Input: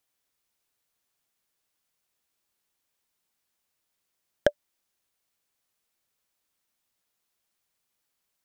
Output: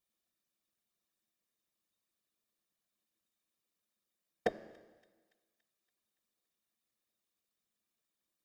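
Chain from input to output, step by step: comb filter that takes the minimum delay 1.7 ms; feedback comb 130 Hz, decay 1.4 s, mix 60%; whisper effect; small resonant body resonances 220/320/3700 Hz, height 15 dB, ringing for 85 ms; on a send: feedback echo behind a high-pass 284 ms, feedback 55%, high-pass 2.2 kHz, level -24 dB

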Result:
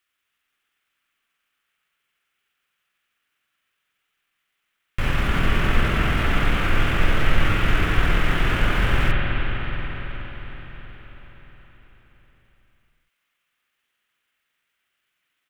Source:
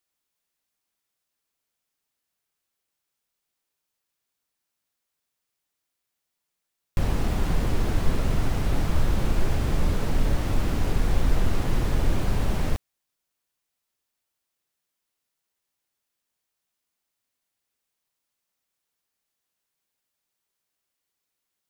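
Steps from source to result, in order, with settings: high-order bell 2 kHz +12 dB; tempo 1.4×; reverberation RT60 5.2 s, pre-delay 46 ms, DRR -2 dB

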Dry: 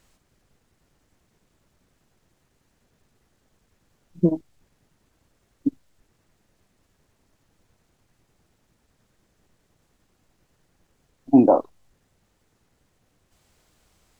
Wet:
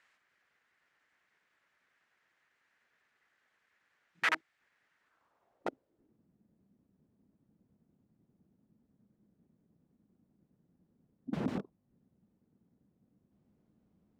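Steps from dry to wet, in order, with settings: integer overflow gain 19.5 dB; band-pass sweep 1.8 kHz -> 210 Hz, 4.99–6.24 s; trim +3.5 dB

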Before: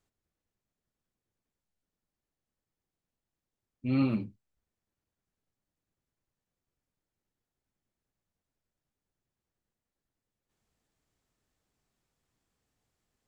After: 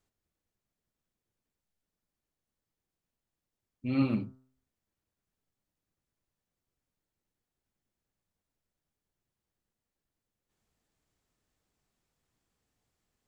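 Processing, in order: de-hum 130 Hz, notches 14

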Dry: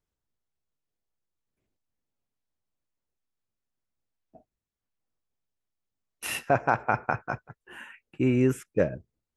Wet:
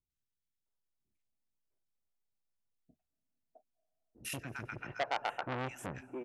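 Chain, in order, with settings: tempo 1.5×; band-stop 1.1 kHz, Q 17; three bands offset in time lows, highs, mids 100/660 ms, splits 380/1700 Hz; on a send at -23 dB: reverberation RT60 3.4 s, pre-delay 176 ms; on the sum: transformer saturation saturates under 2 kHz; trim -5.5 dB

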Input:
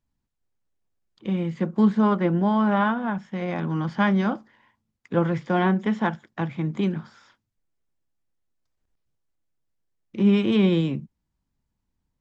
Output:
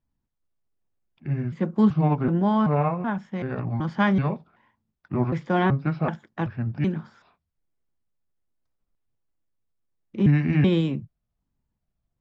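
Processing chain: pitch shift switched off and on -5.5 st, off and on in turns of 380 ms; tape noise reduction on one side only decoder only

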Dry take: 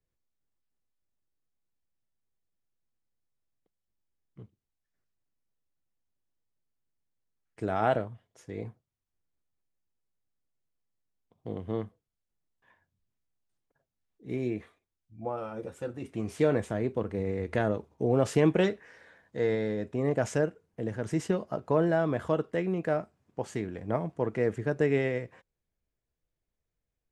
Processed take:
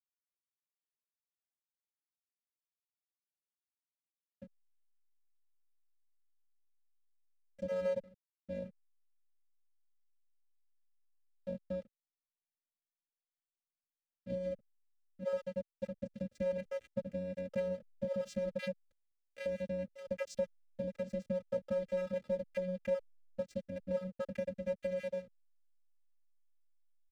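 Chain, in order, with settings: random holes in the spectrogram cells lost 40%; reverb removal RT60 0.64 s; comb 5.3 ms, depth 35%; waveshaping leveller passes 2; compression 6:1, threshold -29 dBFS, peak gain reduction 12 dB; vocoder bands 8, square 183 Hz; hysteresis with a dead band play -52 dBFS; static phaser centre 410 Hz, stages 4; trim +6.5 dB

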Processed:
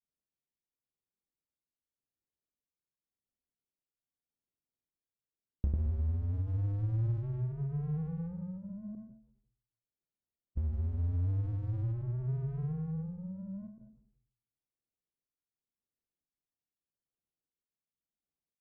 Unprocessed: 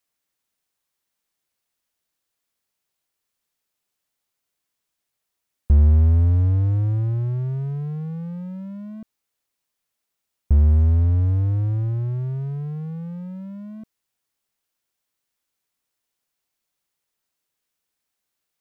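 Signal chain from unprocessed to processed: tremolo 0.87 Hz, depth 41%; level-controlled noise filter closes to 400 Hz, open at -18.5 dBFS; compression 6:1, threshold -24 dBFS, peak gain reduction 12.5 dB; granulator 100 ms, pitch spread up and down by 0 st; frequency-shifting echo 119 ms, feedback 51%, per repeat -84 Hz, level -20.5 dB; on a send at -12 dB: reverberation RT60 0.45 s, pre-delay 116 ms; on the sum: endings held to a fixed fall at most 100 dB/s; trim -4.5 dB

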